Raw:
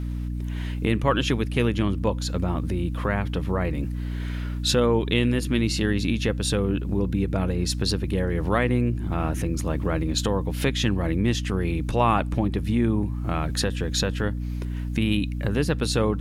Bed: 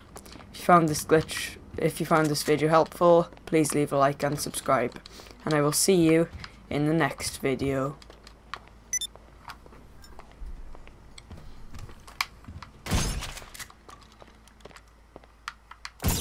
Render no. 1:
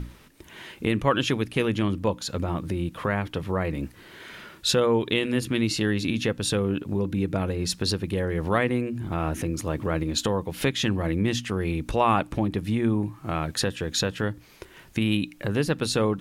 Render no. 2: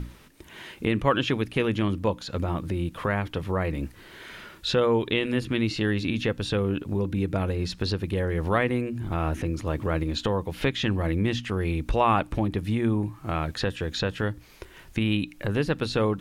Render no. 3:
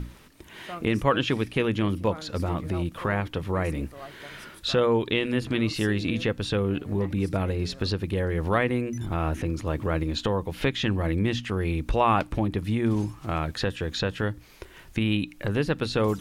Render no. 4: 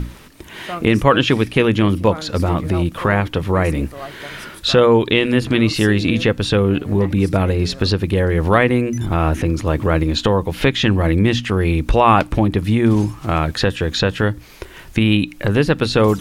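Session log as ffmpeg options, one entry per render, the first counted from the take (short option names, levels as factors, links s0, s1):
-af "bandreject=f=60:t=h:w=6,bandreject=f=120:t=h:w=6,bandreject=f=180:t=h:w=6,bandreject=f=240:t=h:w=6,bandreject=f=300:t=h:w=6"
-filter_complex "[0:a]asubboost=boost=2:cutoff=87,acrossover=split=4400[s0][s1];[s1]acompressor=threshold=0.00355:ratio=4:attack=1:release=60[s2];[s0][s2]amix=inputs=2:normalize=0"
-filter_complex "[1:a]volume=0.1[s0];[0:a][s0]amix=inputs=2:normalize=0"
-af "volume=3.16,alimiter=limit=0.891:level=0:latency=1"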